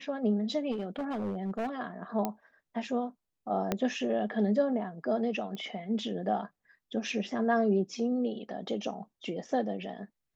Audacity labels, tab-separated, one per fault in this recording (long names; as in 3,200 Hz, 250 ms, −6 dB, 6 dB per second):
0.710000	1.690000	clipping −29.5 dBFS
2.250000	2.250000	click −17 dBFS
3.720000	3.720000	click −14 dBFS
5.550000	5.550000	click −27 dBFS